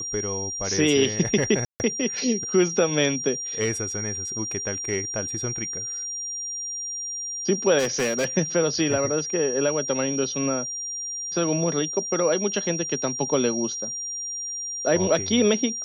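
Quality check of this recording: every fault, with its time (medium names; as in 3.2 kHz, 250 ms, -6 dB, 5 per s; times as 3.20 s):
whine 5.7 kHz -29 dBFS
1.65–1.80 s: dropout 149 ms
7.78–8.25 s: clipped -19.5 dBFS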